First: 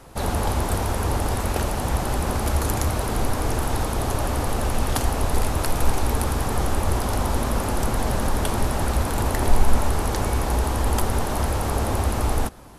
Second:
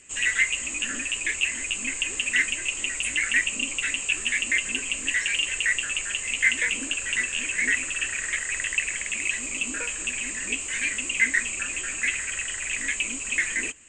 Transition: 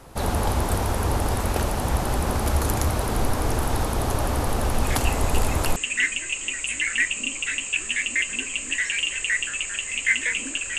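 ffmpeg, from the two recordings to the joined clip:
-filter_complex "[1:a]asplit=2[a][b];[0:a]apad=whole_dur=10.78,atrim=end=10.78,atrim=end=5.762[c];[b]atrim=start=2.118:end=7.14[d];[a]atrim=start=1.2:end=2.12,asetpts=PTS-STARTPTS,volume=-8dB,afade=t=in:d=0.004:c=hsin,afade=t=out:st=0.916:d=0.004:c=hsin,adelay=4840[e];[c][d]acrossfade=d=0.004:c1=hsin:c2=hsin[f];[f][e]amix=inputs=2:normalize=0"

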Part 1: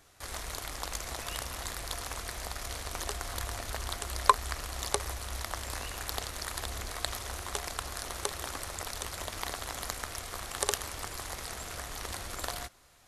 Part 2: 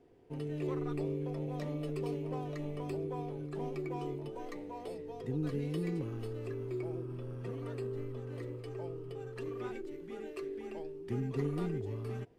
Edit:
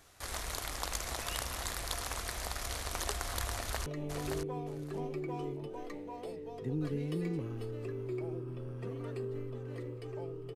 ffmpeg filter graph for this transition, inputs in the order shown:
-filter_complex "[0:a]apad=whole_dur=10.55,atrim=end=10.55,atrim=end=3.862[a];[1:a]atrim=start=2.478:end=9.17[b];[a][b]acrossfade=d=0.004:c1=hsin:c2=hsin,asplit=2[c][d];[d]afade=t=in:st=3.52:d=0.01,afade=t=out:st=3.86:d=0.01,aecho=0:1:570|1140|1710:0.562341|0.0843512|0.0126527[e];[c][e]amix=inputs=2:normalize=0"

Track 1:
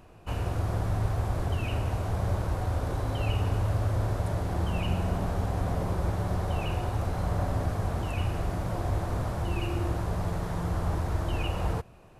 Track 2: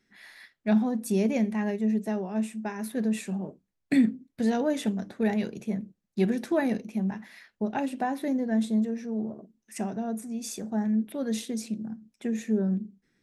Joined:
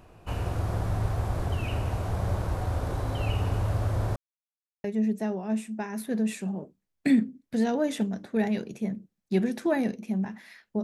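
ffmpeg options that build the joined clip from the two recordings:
-filter_complex "[0:a]apad=whole_dur=10.83,atrim=end=10.83,asplit=2[a][b];[a]atrim=end=4.16,asetpts=PTS-STARTPTS,afade=t=out:st=4.156:d=0.004:c=hsin[c];[b]atrim=start=4.16:end=4.84,asetpts=PTS-STARTPTS,volume=0[d];[1:a]atrim=start=1.7:end=7.69,asetpts=PTS-STARTPTS,afade=t=in:d=0.004:c=hsin[e];[c][d][e]concat=n=3:v=0:a=1"

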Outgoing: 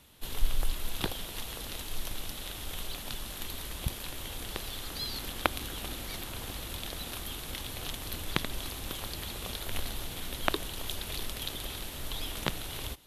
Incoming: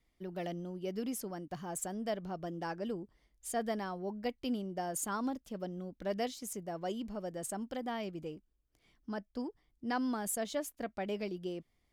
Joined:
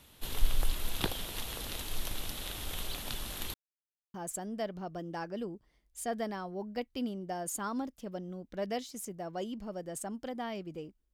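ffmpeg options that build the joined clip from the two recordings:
-filter_complex "[0:a]apad=whole_dur=11.13,atrim=end=11.13,asplit=2[a][b];[a]atrim=end=3.54,asetpts=PTS-STARTPTS,afade=t=out:st=3.536:d=0.004:c=hsin[c];[b]atrim=start=3.54:end=4.14,asetpts=PTS-STARTPTS,volume=0[d];[1:a]atrim=start=1.62:end=8.61,asetpts=PTS-STARTPTS,afade=t=in:d=0.004:c=hsin[e];[c][d][e]concat=n=3:v=0:a=1"

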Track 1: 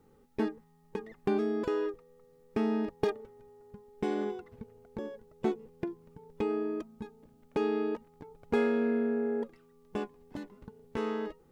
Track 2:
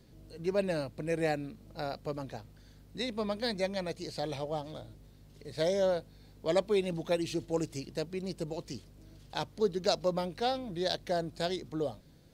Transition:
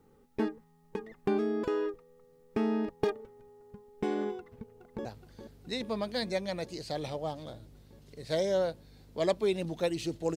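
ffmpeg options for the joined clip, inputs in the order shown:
-filter_complex "[0:a]apad=whole_dur=10.36,atrim=end=10.36,atrim=end=5.052[a];[1:a]atrim=start=2.328:end=7.64[b];[a][b]acrossfade=d=0.004:c1=hsin:c2=hsin,asplit=2[c][d];[d]afade=t=in:st=4.38:d=0.01,afade=t=out:st=5.05:d=0.01,aecho=0:1:420|840|1260|1680|2100|2520|2940|3360|3780|4200|4620|5040:0.316228|0.252982|0.202386|0.161909|0.129527|0.103622|0.0828972|0.0663178|0.0530542|0.0424434|0.0339547|0.0271638[e];[c][e]amix=inputs=2:normalize=0"

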